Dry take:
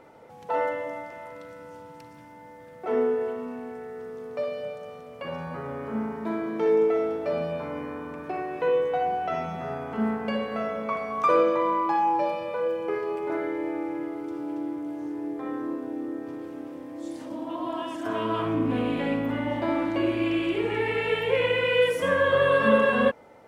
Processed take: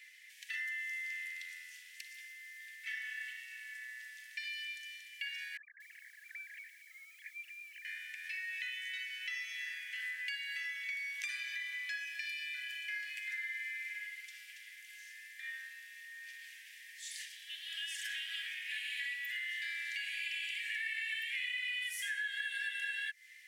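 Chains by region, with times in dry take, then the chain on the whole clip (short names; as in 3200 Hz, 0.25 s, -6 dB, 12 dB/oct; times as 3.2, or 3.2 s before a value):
5.57–7.85 sine-wave speech + compressor 3:1, threshold -33 dBFS + lo-fi delay 0.232 s, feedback 35%, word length 10-bit, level -11 dB
whole clip: Chebyshev high-pass 1700 Hz, order 8; dynamic EQ 2700 Hz, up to -8 dB, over -48 dBFS, Q 1; compressor 6:1, threshold -45 dBFS; gain +9 dB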